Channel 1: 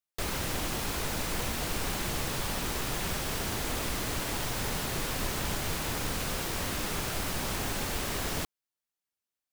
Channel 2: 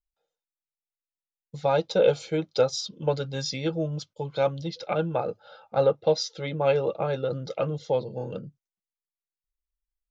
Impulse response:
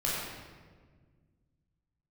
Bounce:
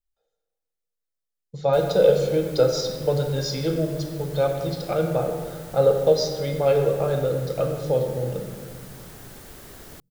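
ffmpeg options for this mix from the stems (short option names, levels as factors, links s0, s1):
-filter_complex "[0:a]acrossover=split=2900[s0][s1];[s1]acompressor=threshold=0.00501:ratio=4:attack=1:release=60[s2];[s0][s2]amix=inputs=2:normalize=0,crystalizer=i=2.5:c=0,adelay=1550,volume=0.282[s3];[1:a]volume=0.841,asplit=2[s4][s5];[s5]volume=0.398[s6];[2:a]atrim=start_sample=2205[s7];[s6][s7]afir=irnorm=-1:irlink=0[s8];[s3][s4][s8]amix=inputs=3:normalize=0,equalizer=f=400:t=o:w=0.67:g=3,equalizer=f=1000:t=o:w=0.67:g=-4,equalizer=f=2500:t=o:w=0.67:g=-6"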